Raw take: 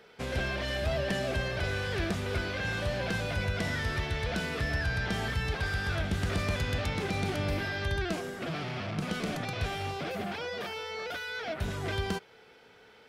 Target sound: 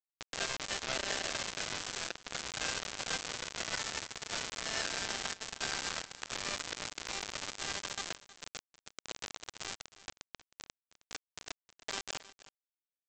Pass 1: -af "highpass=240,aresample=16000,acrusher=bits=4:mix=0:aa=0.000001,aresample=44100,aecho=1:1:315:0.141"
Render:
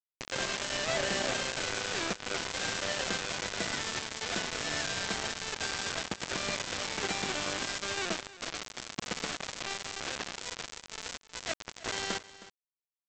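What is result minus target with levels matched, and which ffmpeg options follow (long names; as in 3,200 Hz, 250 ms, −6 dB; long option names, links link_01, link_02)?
250 Hz band +5.0 dB
-af "highpass=610,aresample=16000,acrusher=bits=4:mix=0:aa=0.000001,aresample=44100,aecho=1:1:315:0.141"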